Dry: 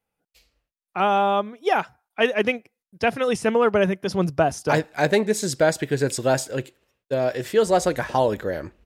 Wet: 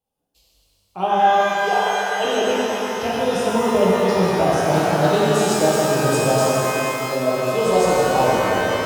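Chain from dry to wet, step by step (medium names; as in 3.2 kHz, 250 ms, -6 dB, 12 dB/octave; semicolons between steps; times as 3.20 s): 1.30–2.25 s: brick-wall FIR high-pass 400 Hz; high-order bell 1.8 kHz -13.5 dB 1.1 oct; pitch-shifted reverb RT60 3.7 s, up +12 st, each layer -8 dB, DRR -7.5 dB; trim -4 dB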